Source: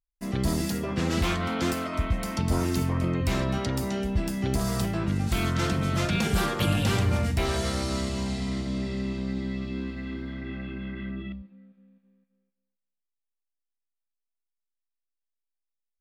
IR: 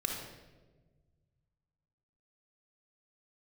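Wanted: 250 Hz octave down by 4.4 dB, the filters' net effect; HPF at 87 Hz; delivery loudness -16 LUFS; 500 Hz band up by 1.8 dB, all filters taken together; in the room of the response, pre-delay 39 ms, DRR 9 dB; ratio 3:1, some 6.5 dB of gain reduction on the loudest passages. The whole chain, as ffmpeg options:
-filter_complex "[0:a]highpass=87,equalizer=f=250:t=o:g=-7.5,equalizer=f=500:t=o:g=5,acompressor=threshold=-31dB:ratio=3,asplit=2[a][b];[1:a]atrim=start_sample=2205,adelay=39[c];[b][c]afir=irnorm=-1:irlink=0,volume=-12.5dB[d];[a][d]amix=inputs=2:normalize=0,volume=18dB"

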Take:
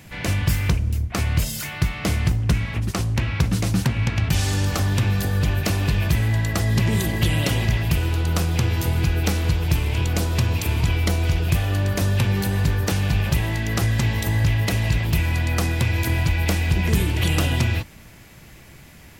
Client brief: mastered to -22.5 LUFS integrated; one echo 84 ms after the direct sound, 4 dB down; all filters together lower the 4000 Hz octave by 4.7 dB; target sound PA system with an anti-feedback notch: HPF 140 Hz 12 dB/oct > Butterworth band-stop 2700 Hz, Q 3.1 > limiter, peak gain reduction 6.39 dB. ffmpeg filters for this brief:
-af "highpass=140,asuperstop=centerf=2700:order=8:qfactor=3.1,equalizer=f=4k:t=o:g=-3.5,aecho=1:1:84:0.631,volume=3.5dB,alimiter=limit=-12dB:level=0:latency=1"

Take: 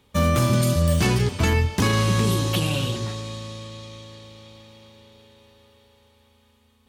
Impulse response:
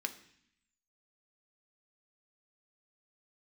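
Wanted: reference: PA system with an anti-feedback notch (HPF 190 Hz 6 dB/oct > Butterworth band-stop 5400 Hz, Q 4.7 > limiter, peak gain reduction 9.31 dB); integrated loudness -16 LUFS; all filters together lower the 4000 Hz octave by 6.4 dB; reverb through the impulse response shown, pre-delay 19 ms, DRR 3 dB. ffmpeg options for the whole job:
-filter_complex "[0:a]equalizer=f=4k:t=o:g=-8,asplit=2[a][b];[1:a]atrim=start_sample=2205,adelay=19[c];[b][c]afir=irnorm=-1:irlink=0,volume=-4dB[d];[a][d]amix=inputs=2:normalize=0,highpass=f=190:p=1,asuperstop=centerf=5400:order=8:qfactor=4.7,volume=13.5dB,alimiter=limit=-6dB:level=0:latency=1"

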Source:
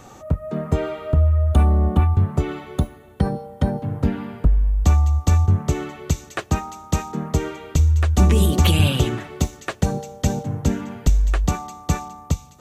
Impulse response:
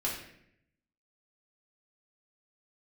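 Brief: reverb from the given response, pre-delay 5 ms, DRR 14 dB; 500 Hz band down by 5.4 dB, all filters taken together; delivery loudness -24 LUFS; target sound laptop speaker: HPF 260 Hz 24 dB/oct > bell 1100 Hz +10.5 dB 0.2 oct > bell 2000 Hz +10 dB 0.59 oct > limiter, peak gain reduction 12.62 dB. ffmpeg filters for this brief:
-filter_complex "[0:a]equalizer=f=500:t=o:g=-7.5,asplit=2[a][b];[1:a]atrim=start_sample=2205,adelay=5[c];[b][c]afir=irnorm=-1:irlink=0,volume=-19dB[d];[a][d]amix=inputs=2:normalize=0,highpass=f=260:w=0.5412,highpass=f=260:w=1.3066,equalizer=f=1.1k:t=o:w=0.2:g=10.5,equalizer=f=2k:t=o:w=0.59:g=10,volume=7dB,alimiter=limit=-12dB:level=0:latency=1"

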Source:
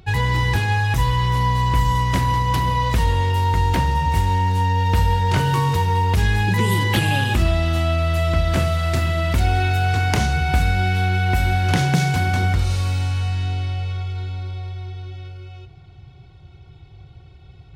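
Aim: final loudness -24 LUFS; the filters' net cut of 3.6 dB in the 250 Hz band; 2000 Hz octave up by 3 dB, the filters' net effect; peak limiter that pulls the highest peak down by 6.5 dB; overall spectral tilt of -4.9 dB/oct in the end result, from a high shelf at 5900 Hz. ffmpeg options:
-af "equalizer=f=250:t=o:g=-6.5,equalizer=f=2k:t=o:g=3.5,highshelf=f=5.9k:g=3.5,volume=-3.5dB,alimiter=limit=-14.5dB:level=0:latency=1"

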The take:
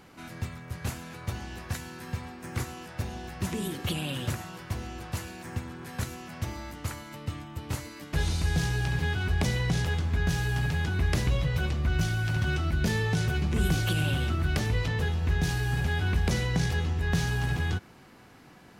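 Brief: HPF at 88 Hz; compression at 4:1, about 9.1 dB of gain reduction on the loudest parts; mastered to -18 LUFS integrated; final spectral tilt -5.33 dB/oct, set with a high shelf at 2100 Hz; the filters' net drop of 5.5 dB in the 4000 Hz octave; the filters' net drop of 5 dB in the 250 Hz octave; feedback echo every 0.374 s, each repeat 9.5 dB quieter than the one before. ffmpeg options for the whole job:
-af "highpass=88,equalizer=f=250:t=o:g=-8.5,highshelf=f=2.1k:g=-3,equalizer=f=4k:t=o:g=-4.5,acompressor=threshold=-37dB:ratio=4,aecho=1:1:374|748|1122|1496:0.335|0.111|0.0365|0.012,volume=22.5dB"

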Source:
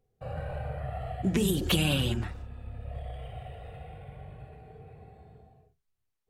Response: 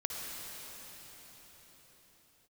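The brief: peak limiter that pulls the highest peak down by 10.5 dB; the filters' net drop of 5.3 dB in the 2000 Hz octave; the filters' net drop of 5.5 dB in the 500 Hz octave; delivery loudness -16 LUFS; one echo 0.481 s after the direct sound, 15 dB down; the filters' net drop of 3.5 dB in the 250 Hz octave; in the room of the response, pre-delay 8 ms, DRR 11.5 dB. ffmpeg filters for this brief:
-filter_complex "[0:a]equalizer=f=250:t=o:g=-4,equalizer=f=500:t=o:g=-5.5,equalizer=f=2k:t=o:g=-8,alimiter=level_in=1dB:limit=-24dB:level=0:latency=1,volume=-1dB,aecho=1:1:481:0.178,asplit=2[a][b];[1:a]atrim=start_sample=2205,adelay=8[c];[b][c]afir=irnorm=-1:irlink=0,volume=-15dB[d];[a][d]amix=inputs=2:normalize=0,volume=22dB"

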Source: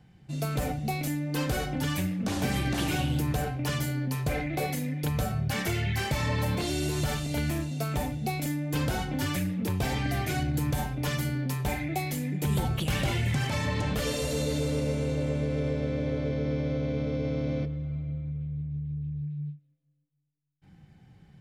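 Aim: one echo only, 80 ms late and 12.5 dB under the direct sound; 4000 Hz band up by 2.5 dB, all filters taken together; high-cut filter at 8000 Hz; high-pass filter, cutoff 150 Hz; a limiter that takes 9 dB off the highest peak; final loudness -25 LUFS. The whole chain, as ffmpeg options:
-af "highpass=150,lowpass=8k,equalizer=f=4k:t=o:g=3.5,alimiter=level_in=2dB:limit=-24dB:level=0:latency=1,volume=-2dB,aecho=1:1:80:0.237,volume=9.5dB"

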